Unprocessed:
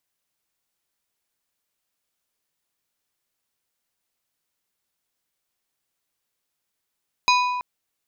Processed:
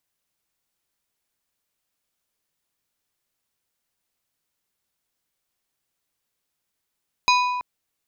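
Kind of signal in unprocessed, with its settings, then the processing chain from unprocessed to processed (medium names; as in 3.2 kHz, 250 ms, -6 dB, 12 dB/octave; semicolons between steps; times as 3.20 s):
glass hit plate, length 0.33 s, lowest mode 991 Hz, decay 1.77 s, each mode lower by 3 dB, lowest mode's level -15 dB
bass shelf 220 Hz +3.5 dB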